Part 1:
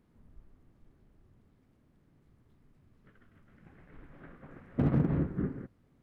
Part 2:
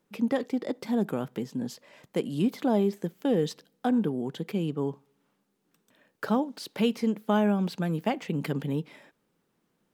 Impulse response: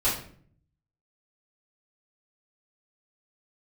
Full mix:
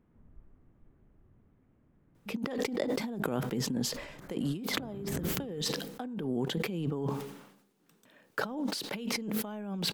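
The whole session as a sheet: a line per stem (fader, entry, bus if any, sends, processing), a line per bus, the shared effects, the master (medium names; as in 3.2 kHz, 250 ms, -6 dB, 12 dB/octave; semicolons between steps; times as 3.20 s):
-4.0 dB, 0.00 s, no send, local Wiener filter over 9 samples
-2.0 dB, 2.15 s, no send, decay stretcher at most 69 dB/s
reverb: none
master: compressor with a negative ratio -34 dBFS, ratio -1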